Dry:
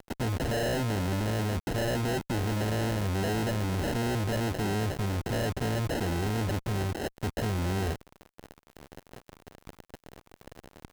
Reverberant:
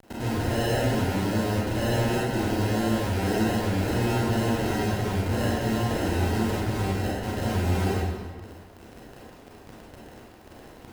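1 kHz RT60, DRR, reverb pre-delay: 1.6 s, -7.0 dB, 28 ms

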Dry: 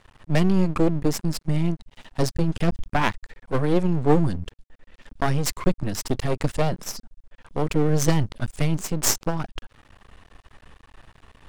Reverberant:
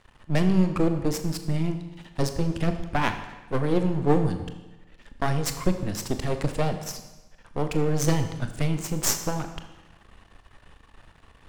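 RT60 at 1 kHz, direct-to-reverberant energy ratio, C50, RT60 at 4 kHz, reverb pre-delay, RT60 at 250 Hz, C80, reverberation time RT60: 1.1 s, 7.0 dB, 9.5 dB, 1.0 s, 24 ms, 1.1 s, 11.0 dB, 1.1 s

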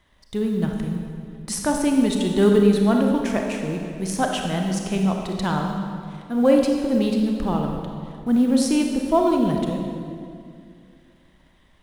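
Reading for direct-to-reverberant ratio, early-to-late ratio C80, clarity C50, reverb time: 1.5 dB, 4.0 dB, 2.5 dB, 2.4 s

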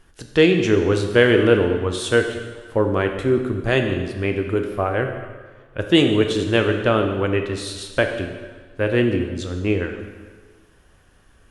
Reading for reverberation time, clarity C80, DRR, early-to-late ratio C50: 1.5 s, 8.0 dB, 4.5 dB, 6.5 dB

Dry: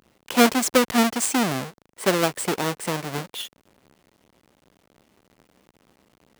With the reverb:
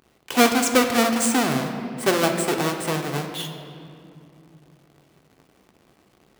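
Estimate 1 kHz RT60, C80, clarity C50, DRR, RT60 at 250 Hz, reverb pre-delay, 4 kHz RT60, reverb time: 2.5 s, 7.5 dB, 6.5 dB, 3.5 dB, 3.8 s, 3 ms, 1.5 s, 2.7 s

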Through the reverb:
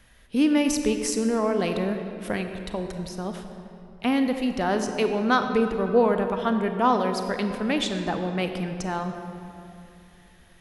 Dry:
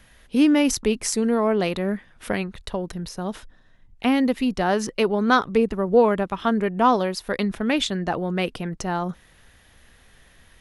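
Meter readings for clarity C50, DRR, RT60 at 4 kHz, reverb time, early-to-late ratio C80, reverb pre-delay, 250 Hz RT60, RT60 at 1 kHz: 6.5 dB, 6.0 dB, 1.7 s, 2.8 s, 7.0 dB, 30 ms, 3.4 s, 2.7 s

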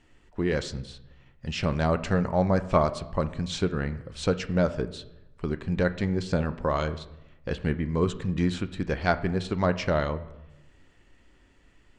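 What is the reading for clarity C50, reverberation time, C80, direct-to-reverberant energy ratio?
15.0 dB, 0.90 s, 17.0 dB, 11.0 dB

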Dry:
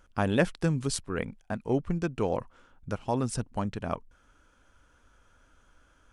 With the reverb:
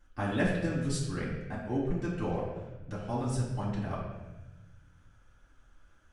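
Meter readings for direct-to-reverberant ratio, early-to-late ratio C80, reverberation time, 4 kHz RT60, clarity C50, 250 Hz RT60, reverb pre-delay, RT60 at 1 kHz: -9.0 dB, 4.0 dB, 1.1 s, 0.90 s, 1.5 dB, 1.6 s, 3 ms, 1.0 s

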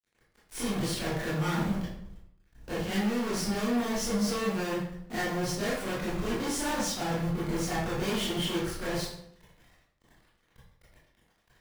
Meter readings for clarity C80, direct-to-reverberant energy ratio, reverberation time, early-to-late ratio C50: 4.5 dB, -9.5 dB, 0.70 s, 0.5 dB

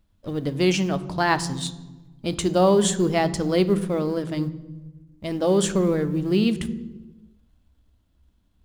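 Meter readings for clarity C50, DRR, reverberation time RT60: 15.5 dB, 12.0 dB, 1.2 s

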